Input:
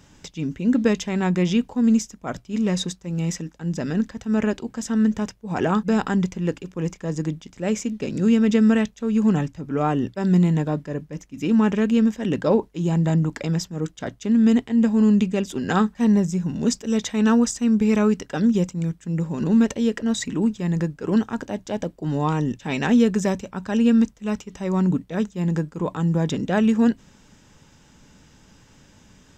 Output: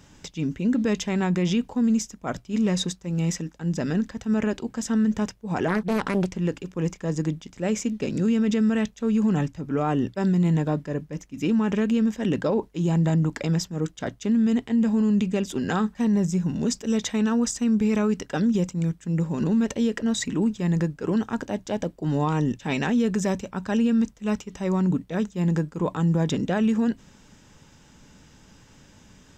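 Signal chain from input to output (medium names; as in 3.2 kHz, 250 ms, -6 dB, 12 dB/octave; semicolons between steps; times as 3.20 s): peak limiter -15.5 dBFS, peak gain reduction 8 dB; 5.68–6.37 s: loudspeaker Doppler distortion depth 0.7 ms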